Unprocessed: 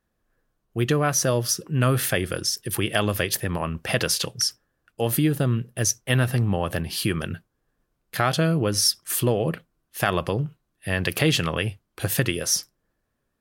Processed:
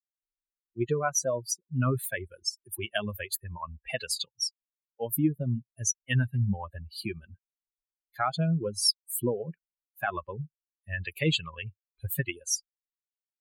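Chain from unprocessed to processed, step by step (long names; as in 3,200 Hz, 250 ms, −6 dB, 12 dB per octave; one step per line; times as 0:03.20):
spectral dynamics exaggerated over time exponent 3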